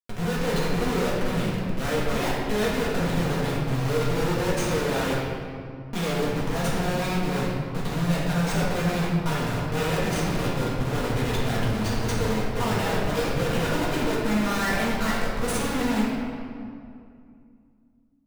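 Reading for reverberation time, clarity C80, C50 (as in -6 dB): 2.4 s, 1.0 dB, -1.0 dB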